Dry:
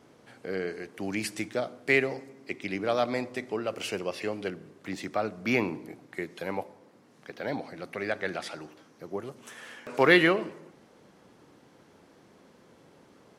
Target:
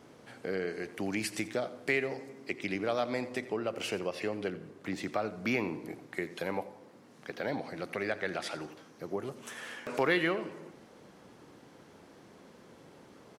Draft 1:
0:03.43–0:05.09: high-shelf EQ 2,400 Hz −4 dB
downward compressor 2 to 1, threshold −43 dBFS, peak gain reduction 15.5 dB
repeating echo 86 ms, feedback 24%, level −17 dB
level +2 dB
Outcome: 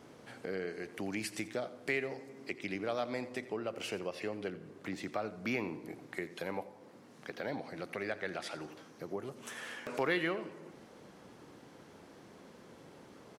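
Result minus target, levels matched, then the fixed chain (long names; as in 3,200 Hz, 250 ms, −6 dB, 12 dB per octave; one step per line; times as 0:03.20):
downward compressor: peak gain reduction +4 dB
0:03.43–0:05.09: high-shelf EQ 2,400 Hz −4 dB
downward compressor 2 to 1, threshold −34.5 dBFS, peak gain reduction 11.5 dB
repeating echo 86 ms, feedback 24%, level −17 dB
level +2 dB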